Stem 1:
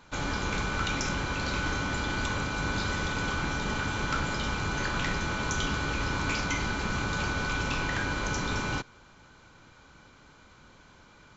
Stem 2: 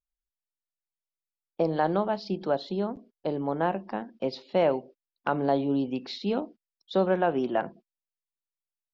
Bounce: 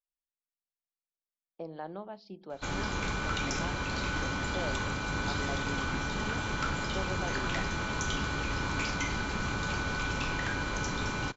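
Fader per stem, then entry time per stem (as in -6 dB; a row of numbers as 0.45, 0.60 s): -2.5, -15.5 dB; 2.50, 0.00 s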